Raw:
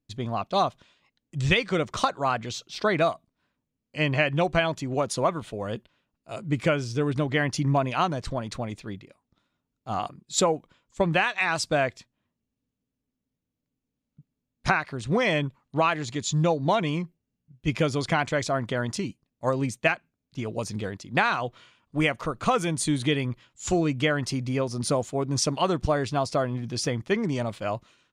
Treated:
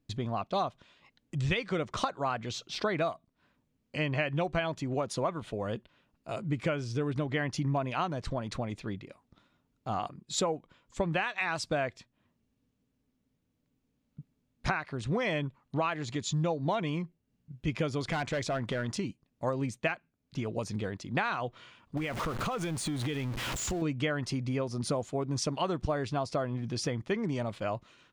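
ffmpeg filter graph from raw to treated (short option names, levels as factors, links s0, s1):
-filter_complex "[0:a]asettb=1/sr,asplit=3[s0][s1][s2];[s0]atrim=end=18.014[s3];[s1]atrim=start=18.01:end=18.95,asetpts=PTS-STARTPTS,afade=t=in:d=0.004:c=qsin,afade=t=out:st=0.936:d=0.004:c=qsin,acompressor=mode=upward:threshold=0.0447:ratio=2.5:attack=3.2:release=140:knee=2.83:detection=peak,volume=13.3,asoftclip=hard,volume=0.075[s4];[s2]atrim=start=18.946[s5];[s3][s4]acrossfade=d=0.004:c1=hsin:c2=qsin[s6];[s6][s5]acrossfade=d=0.004:c1=qsin:c2=hsin,asettb=1/sr,asplit=3[s7][s8][s9];[s7]atrim=end=21.974[s10];[s8]atrim=start=21.97:end=23.82,asetpts=PTS-STARTPTS,afade=t=in:d=0.004:c=qsin,afade=t=out:st=1.846:d=0.004:c=qsin,aeval=exprs='val(0)+0.5*0.0376*sgn(val(0))':c=same,acompressor=threshold=0.0398:ratio=4:attack=3.2:release=140:knee=1:detection=peak[s11];[s9]atrim=start=23.816[s12];[s10][s11]acrossfade=d=0.004:c1=hsin:c2=qsin[s13];[s13][s12]acrossfade=d=0.004:c1=qsin:c2=hsin,highshelf=f=5900:g=-8,acompressor=threshold=0.00501:ratio=2,volume=2.24"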